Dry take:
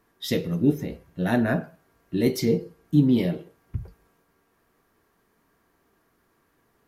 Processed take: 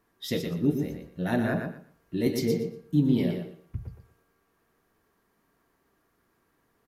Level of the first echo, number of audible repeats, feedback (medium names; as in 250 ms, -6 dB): -6.0 dB, 3, 21%